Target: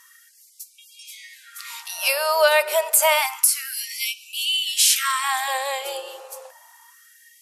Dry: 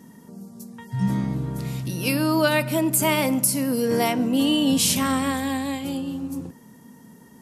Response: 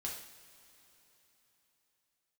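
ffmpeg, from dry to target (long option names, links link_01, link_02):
-filter_complex "[0:a]asplit=2[link_01][link_02];[link_02]alimiter=limit=-13.5dB:level=0:latency=1:release=352,volume=2dB[link_03];[link_01][link_03]amix=inputs=2:normalize=0,afftfilt=real='re*gte(b*sr/1024,370*pow(2300/370,0.5+0.5*sin(2*PI*0.29*pts/sr)))':imag='im*gte(b*sr/1024,370*pow(2300/370,0.5+0.5*sin(2*PI*0.29*pts/sr)))':win_size=1024:overlap=0.75"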